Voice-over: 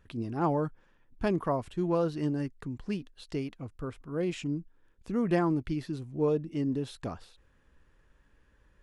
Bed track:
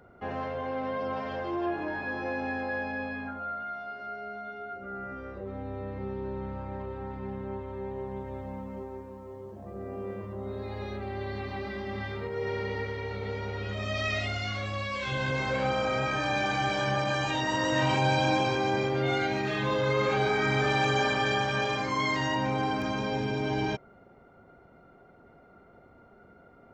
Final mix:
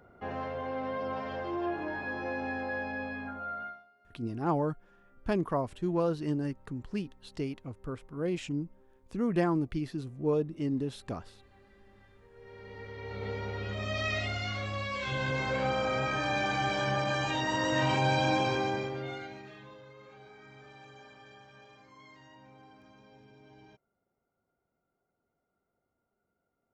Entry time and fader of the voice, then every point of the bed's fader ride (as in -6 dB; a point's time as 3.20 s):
4.05 s, -1.0 dB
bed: 3.66 s -2.5 dB
3.90 s -25.5 dB
12.21 s -25.5 dB
13.24 s -2 dB
18.59 s -2 dB
19.93 s -27 dB